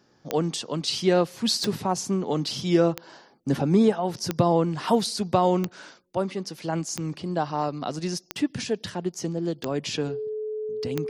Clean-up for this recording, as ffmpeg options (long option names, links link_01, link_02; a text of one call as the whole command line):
ffmpeg -i in.wav -af "adeclick=threshold=4,bandreject=frequency=430:width=30" out.wav